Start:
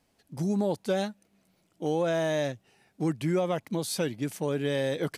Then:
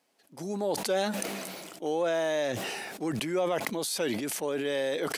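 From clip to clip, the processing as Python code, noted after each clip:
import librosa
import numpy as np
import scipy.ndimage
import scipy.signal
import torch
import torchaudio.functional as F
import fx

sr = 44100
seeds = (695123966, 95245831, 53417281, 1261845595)

y = scipy.signal.sosfilt(scipy.signal.butter(2, 340.0, 'highpass', fs=sr, output='sos'), x)
y = fx.sustainer(y, sr, db_per_s=26.0)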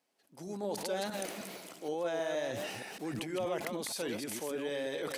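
y = fx.reverse_delay(x, sr, ms=157, wet_db=-5.0)
y = y * 10.0 ** (-7.5 / 20.0)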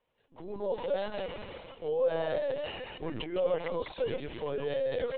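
y = fx.small_body(x, sr, hz=(510.0, 1000.0, 2900.0), ring_ms=30, db=9)
y = fx.lpc_vocoder(y, sr, seeds[0], excitation='pitch_kept', order=16)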